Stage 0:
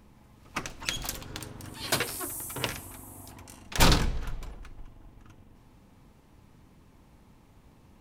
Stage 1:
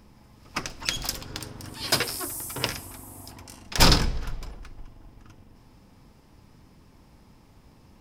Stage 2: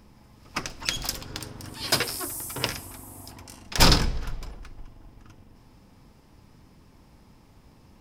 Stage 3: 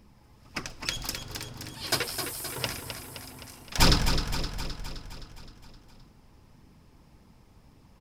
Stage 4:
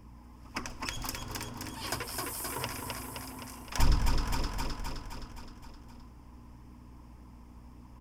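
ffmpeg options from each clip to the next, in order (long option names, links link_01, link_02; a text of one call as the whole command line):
ffmpeg -i in.wav -af "equalizer=frequency=5100:width=6.5:gain=10.5,volume=2.5dB" out.wav
ffmpeg -i in.wav -af anull out.wav
ffmpeg -i in.wav -af "flanger=delay=0.3:depth=2.4:regen=-44:speed=1.8:shape=triangular,aecho=1:1:260|520|780|1040|1300|1560|1820|2080:0.398|0.239|0.143|0.086|0.0516|0.031|0.0186|0.0111" out.wav
ffmpeg -i in.wav -filter_complex "[0:a]aeval=exprs='val(0)+0.00282*(sin(2*PI*60*n/s)+sin(2*PI*2*60*n/s)/2+sin(2*PI*3*60*n/s)/3+sin(2*PI*4*60*n/s)/4+sin(2*PI*5*60*n/s)/5)':channel_layout=same,equalizer=frequency=160:width_type=o:width=0.33:gain=-10,equalizer=frequency=250:width_type=o:width=0.33:gain=6,equalizer=frequency=1000:width_type=o:width=0.33:gain=9,equalizer=frequency=4000:width_type=o:width=0.33:gain=-11,acrossover=split=140[link_01][link_02];[link_02]acompressor=threshold=-32dB:ratio=10[link_03];[link_01][link_03]amix=inputs=2:normalize=0" out.wav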